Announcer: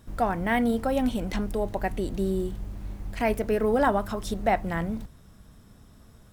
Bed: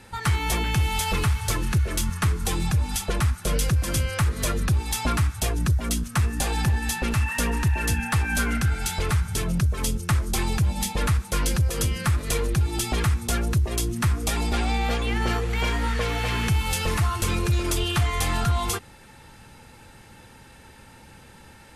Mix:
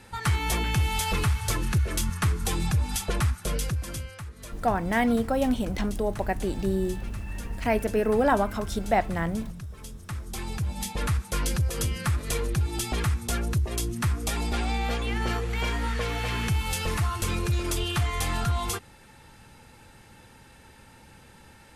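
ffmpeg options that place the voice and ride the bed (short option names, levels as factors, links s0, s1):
-filter_complex "[0:a]adelay=4450,volume=1.06[s0];[1:a]volume=3.76,afade=t=out:st=3.21:d=1:silence=0.177828,afade=t=in:st=9.94:d=1.25:silence=0.211349[s1];[s0][s1]amix=inputs=2:normalize=0"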